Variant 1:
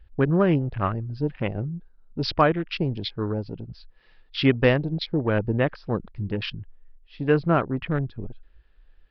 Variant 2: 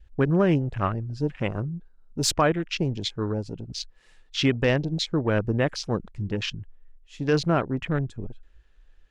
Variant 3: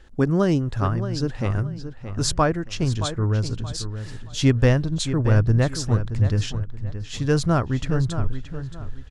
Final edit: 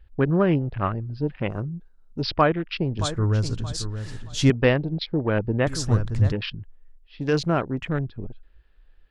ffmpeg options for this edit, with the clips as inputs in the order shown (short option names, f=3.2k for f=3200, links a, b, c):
-filter_complex "[1:a]asplit=2[a][b];[2:a]asplit=2[c][d];[0:a]asplit=5[e][f][g][h][i];[e]atrim=end=1.502[j];[a]atrim=start=1.498:end=2.212[k];[f]atrim=start=2.208:end=2.992[l];[c]atrim=start=2.988:end=4.502[m];[g]atrim=start=4.498:end=5.672[n];[d]atrim=start=5.668:end=6.322[o];[h]atrim=start=6.318:end=7.212[p];[b]atrim=start=7.208:end=8.052[q];[i]atrim=start=8.048[r];[j][k]acrossfade=d=0.004:c1=hsin:c2=hsin[s];[s][l]acrossfade=d=0.004:c1=hsin:c2=hsin[t];[t][m]acrossfade=d=0.004:c1=hsin:c2=hsin[u];[u][n]acrossfade=d=0.004:c1=hsin:c2=hsin[v];[v][o]acrossfade=d=0.004:c1=hsin:c2=hsin[w];[w][p]acrossfade=d=0.004:c1=hsin:c2=hsin[x];[x][q]acrossfade=d=0.004:c1=hsin:c2=hsin[y];[y][r]acrossfade=d=0.004:c1=hsin:c2=hsin"